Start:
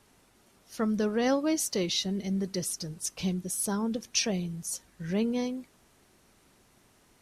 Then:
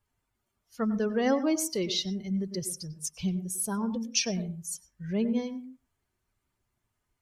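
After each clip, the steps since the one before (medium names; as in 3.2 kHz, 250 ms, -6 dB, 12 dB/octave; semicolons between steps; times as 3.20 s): expander on every frequency bin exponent 1.5; on a send at -12.5 dB: reverberation, pre-delay 95 ms; on the sum: trim +1.5 dB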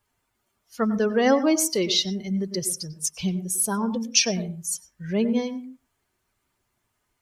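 bass shelf 180 Hz -9 dB; trim +8 dB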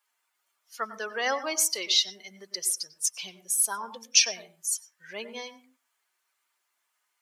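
high-pass 1 kHz 12 dB/octave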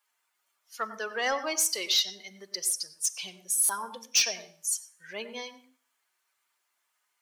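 Schroeder reverb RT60 0.55 s, combs from 29 ms, DRR 18 dB; saturation -16 dBFS, distortion -14 dB; buffer glitch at 3.64 s, samples 256, times 8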